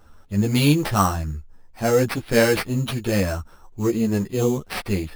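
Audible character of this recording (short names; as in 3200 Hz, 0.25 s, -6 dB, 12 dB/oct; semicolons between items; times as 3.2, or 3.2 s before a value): aliases and images of a low sample rate 6900 Hz, jitter 0%; a shimmering, thickened sound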